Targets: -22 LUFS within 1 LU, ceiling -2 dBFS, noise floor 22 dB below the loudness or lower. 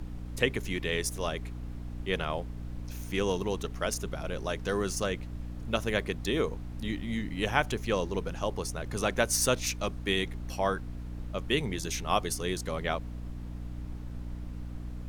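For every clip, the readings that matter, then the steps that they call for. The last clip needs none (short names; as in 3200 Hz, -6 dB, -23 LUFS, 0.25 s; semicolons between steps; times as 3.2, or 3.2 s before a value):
hum 60 Hz; harmonics up to 300 Hz; hum level -37 dBFS; noise floor -40 dBFS; noise floor target -55 dBFS; loudness -32.5 LUFS; peak -8.0 dBFS; loudness target -22.0 LUFS
-> notches 60/120/180/240/300 Hz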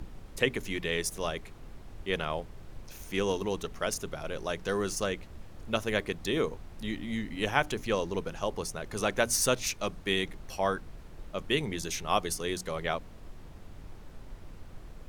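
hum none; noise floor -48 dBFS; noise floor target -54 dBFS
-> noise print and reduce 6 dB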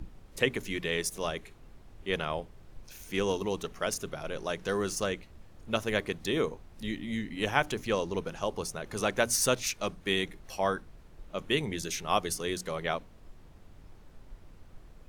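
noise floor -53 dBFS; noise floor target -54 dBFS
-> noise print and reduce 6 dB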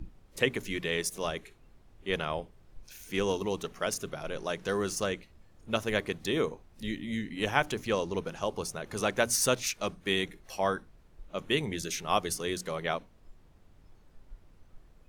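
noise floor -59 dBFS; loudness -32.0 LUFS; peak -8.5 dBFS; loudness target -22.0 LUFS
-> gain +10 dB; limiter -2 dBFS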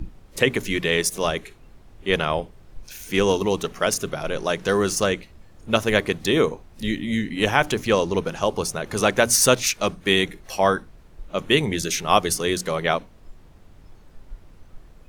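loudness -22.0 LUFS; peak -2.0 dBFS; noise floor -49 dBFS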